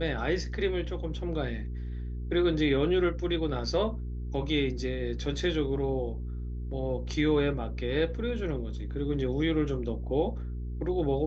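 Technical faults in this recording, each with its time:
hum 60 Hz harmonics 7 -35 dBFS

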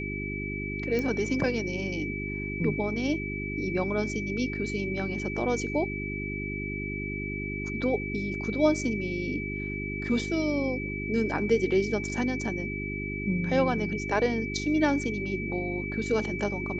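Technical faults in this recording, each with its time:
hum 50 Hz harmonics 8 -35 dBFS
tone 2300 Hz -35 dBFS
0.99 pop -18 dBFS

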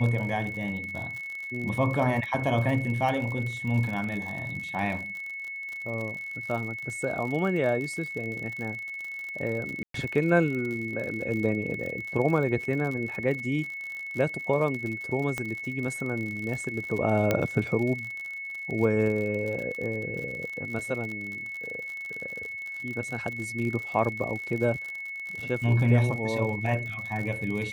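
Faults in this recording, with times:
crackle 57/s -33 dBFS
tone 2200 Hz -34 dBFS
9.83–9.94 gap 0.113 s
15.38 pop -16 dBFS
17.31 pop -10 dBFS

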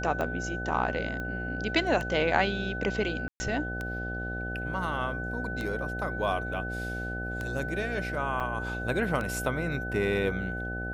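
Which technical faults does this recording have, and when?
buzz 60 Hz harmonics 13 -36 dBFS
tick 33 1/3 rpm -20 dBFS
tone 1500 Hz -35 dBFS
1.2 pop -24 dBFS
3.28–3.4 gap 0.12 s
8.4 gap 4.9 ms

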